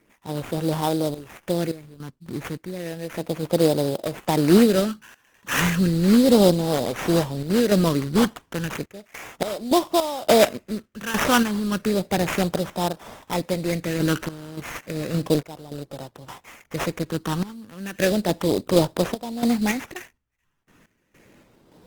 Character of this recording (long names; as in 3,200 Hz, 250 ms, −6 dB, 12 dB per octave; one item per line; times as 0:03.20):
phaser sweep stages 6, 0.33 Hz, lowest notch 640–2,000 Hz
aliases and images of a low sample rate 4,400 Hz, jitter 20%
sample-and-hold tremolo, depth 90%
Opus